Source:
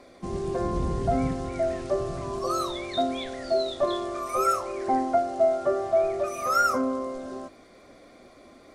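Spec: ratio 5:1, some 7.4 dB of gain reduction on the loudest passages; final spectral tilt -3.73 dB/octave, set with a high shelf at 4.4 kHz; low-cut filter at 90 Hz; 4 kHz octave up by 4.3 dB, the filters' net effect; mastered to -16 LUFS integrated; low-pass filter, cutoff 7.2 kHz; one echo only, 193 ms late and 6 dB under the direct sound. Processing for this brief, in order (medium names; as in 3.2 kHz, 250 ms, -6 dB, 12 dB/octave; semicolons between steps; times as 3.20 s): high-pass 90 Hz; low-pass 7.2 kHz; peaking EQ 4 kHz +7 dB; treble shelf 4.4 kHz -3.5 dB; compression 5:1, threshold -26 dBFS; delay 193 ms -6 dB; trim +14 dB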